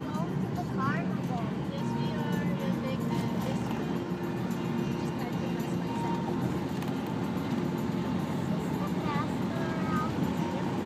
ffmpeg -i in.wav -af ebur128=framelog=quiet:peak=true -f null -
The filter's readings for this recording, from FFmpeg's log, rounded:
Integrated loudness:
  I:         -31.6 LUFS
  Threshold: -41.6 LUFS
Loudness range:
  LRA:         1.0 LU
  Threshold: -51.7 LUFS
  LRA low:   -32.1 LUFS
  LRA high:  -31.1 LUFS
True peak:
  Peak:      -16.3 dBFS